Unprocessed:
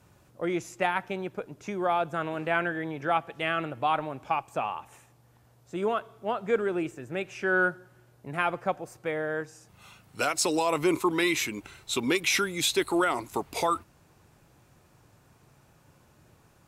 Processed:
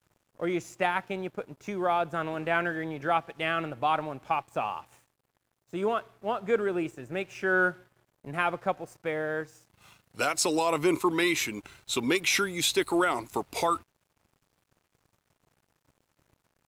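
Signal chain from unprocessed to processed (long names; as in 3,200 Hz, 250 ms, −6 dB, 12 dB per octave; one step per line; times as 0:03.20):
dead-zone distortion −56.5 dBFS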